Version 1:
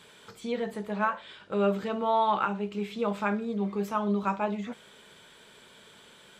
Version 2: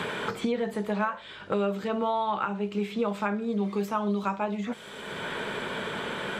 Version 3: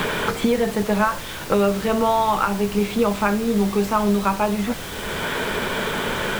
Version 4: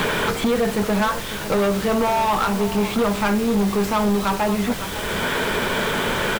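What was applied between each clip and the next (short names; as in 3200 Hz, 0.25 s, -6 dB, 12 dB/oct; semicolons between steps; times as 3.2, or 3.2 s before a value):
three-band squash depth 100%
added noise pink -42 dBFS; gain +8.5 dB
echo 0.551 s -16 dB; overloaded stage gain 18 dB; gain +2.5 dB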